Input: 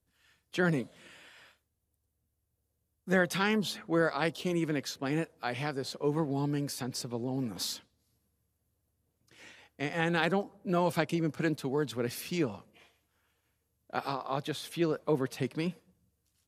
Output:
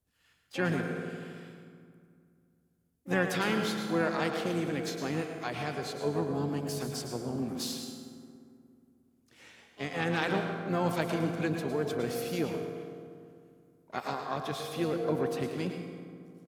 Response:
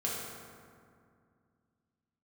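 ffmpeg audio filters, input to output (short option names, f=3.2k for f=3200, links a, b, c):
-filter_complex "[0:a]asplit=2[a][b];[b]equalizer=f=68:w=0.72:g=-10.5[c];[1:a]atrim=start_sample=2205,adelay=109[d];[c][d]afir=irnorm=-1:irlink=0,volume=-8.5dB[e];[a][e]amix=inputs=2:normalize=0,asplit=3[f][g][h];[g]asetrate=29433,aresample=44100,atempo=1.49831,volume=-17dB[i];[h]asetrate=66075,aresample=44100,atempo=0.66742,volume=-11dB[j];[f][i][j]amix=inputs=3:normalize=0,volume=-2.5dB"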